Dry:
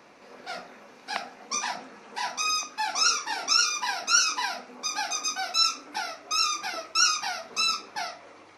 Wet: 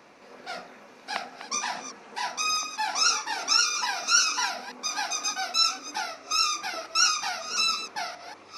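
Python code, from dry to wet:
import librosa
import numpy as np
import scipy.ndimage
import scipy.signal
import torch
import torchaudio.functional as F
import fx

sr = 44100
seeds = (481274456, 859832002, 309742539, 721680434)

y = fx.reverse_delay(x, sr, ms=429, wet_db=-11.0)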